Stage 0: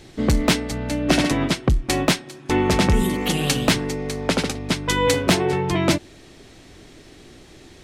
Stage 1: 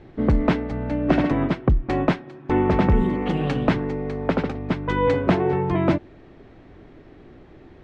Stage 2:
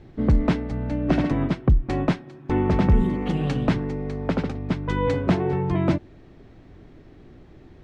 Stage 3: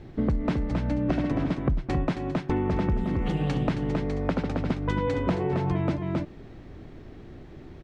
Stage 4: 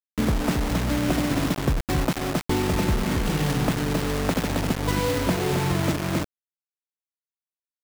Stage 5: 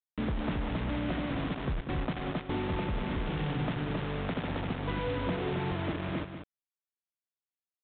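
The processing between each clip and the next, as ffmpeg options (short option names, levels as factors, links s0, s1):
-af "lowpass=1500"
-af "bass=f=250:g=6,treble=f=4000:g=8,volume=0.596"
-filter_complex "[0:a]asplit=2[s0][s1];[s1]aecho=0:1:269:0.422[s2];[s0][s2]amix=inputs=2:normalize=0,acompressor=threshold=0.0562:ratio=6,volume=1.33"
-af "acrusher=bits=4:mix=0:aa=0.000001,volume=1.26"
-af "aresample=8000,asoftclip=type=tanh:threshold=0.119,aresample=44100,aecho=1:1:192:0.355,volume=0.447"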